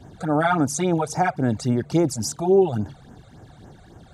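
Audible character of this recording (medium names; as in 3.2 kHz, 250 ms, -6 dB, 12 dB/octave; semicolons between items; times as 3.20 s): phasing stages 12, 3.6 Hz, lowest notch 280–4300 Hz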